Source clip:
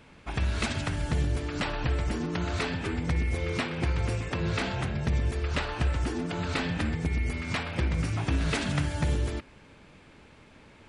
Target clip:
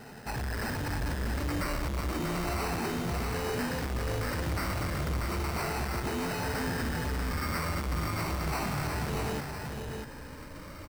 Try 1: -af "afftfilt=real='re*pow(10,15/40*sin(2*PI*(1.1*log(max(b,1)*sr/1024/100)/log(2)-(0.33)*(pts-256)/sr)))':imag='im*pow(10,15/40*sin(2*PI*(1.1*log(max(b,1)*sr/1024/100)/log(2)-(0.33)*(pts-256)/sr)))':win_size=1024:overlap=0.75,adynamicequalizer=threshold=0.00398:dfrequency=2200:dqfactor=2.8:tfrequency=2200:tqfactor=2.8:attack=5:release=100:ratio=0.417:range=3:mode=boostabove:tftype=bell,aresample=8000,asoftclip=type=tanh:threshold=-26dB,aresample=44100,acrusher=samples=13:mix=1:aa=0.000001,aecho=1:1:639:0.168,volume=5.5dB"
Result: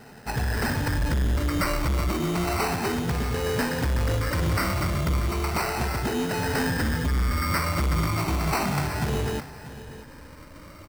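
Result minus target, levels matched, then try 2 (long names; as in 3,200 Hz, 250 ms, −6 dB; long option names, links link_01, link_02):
echo-to-direct −10.5 dB; soft clipping: distortion −5 dB
-af "afftfilt=real='re*pow(10,15/40*sin(2*PI*(1.1*log(max(b,1)*sr/1024/100)/log(2)-(0.33)*(pts-256)/sr)))':imag='im*pow(10,15/40*sin(2*PI*(1.1*log(max(b,1)*sr/1024/100)/log(2)-(0.33)*(pts-256)/sr)))':win_size=1024:overlap=0.75,adynamicequalizer=threshold=0.00398:dfrequency=2200:dqfactor=2.8:tfrequency=2200:tqfactor=2.8:attack=5:release=100:ratio=0.417:range=3:mode=boostabove:tftype=bell,aresample=8000,asoftclip=type=tanh:threshold=-37dB,aresample=44100,acrusher=samples=13:mix=1:aa=0.000001,aecho=1:1:639:0.562,volume=5.5dB"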